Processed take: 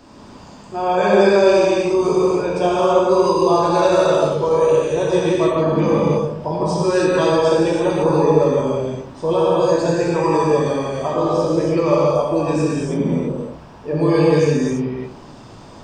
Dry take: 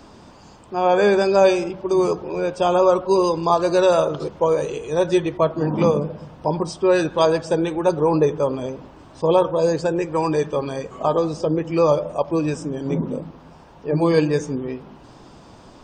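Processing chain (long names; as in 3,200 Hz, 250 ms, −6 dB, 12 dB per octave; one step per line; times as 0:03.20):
in parallel at +1 dB: brickwall limiter −13.5 dBFS, peak gain reduction 9.5 dB
on the sum: reverb whose tail is shaped and stops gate 360 ms flat, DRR −7 dB
level −9 dB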